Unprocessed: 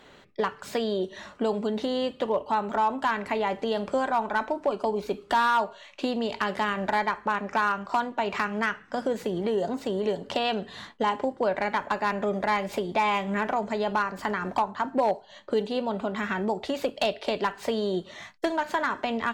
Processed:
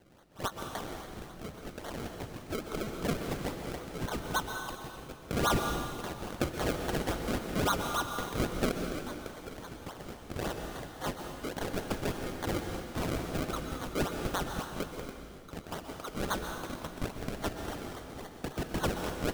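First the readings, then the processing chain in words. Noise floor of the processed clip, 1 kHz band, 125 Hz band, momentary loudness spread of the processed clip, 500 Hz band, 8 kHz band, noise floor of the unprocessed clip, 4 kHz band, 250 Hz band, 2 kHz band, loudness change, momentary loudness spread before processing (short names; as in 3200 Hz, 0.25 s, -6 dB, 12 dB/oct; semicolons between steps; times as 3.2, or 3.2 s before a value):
-48 dBFS, -11.5 dB, +3.5 dB, 12 LU, -9.5 dB, +6.5 dB, -52 dBFS, -4.5 dB, -5.5 dB, -9.0 dB, -8.0 dB, 5 LU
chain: G.711 law mismatch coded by A; steep high-pass 1200 Hz 72 dB/oct; treble ducked by the level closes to 2700 Hz, closed at -27.5 dBFS; high shelf 5400 Hz -11 dB; in parallel at -0.5 dB: compressor, threshold -46 dBFS, peak gain reduction 19 dB; on the sum: decimation with a swept rate 34×, swing 100% 3.6 Hz; on a send: reverse echo 84 ms -23.5 dB; on the sum: plate-style reverb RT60 1.8 s, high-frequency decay 1×, pre-delay 0.11 s, DRR 4 dB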